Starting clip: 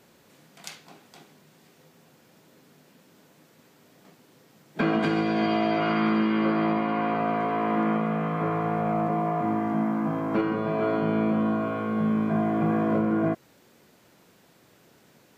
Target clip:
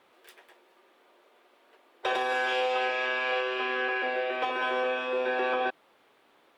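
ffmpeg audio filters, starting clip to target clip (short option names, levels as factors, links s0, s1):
-af "highshelf=f=1800:t=q:w=1.5:g=-9.5,asetrate=103194,aresample=44100,volume=0.596"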